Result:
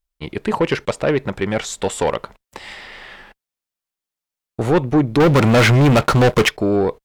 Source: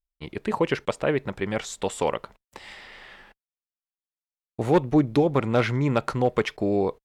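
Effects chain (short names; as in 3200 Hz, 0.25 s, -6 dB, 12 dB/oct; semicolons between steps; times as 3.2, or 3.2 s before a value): 5.2–6.49 sample leveller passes 3; soft clip -17 dBFS, distortion -13 dB; gain +8 dB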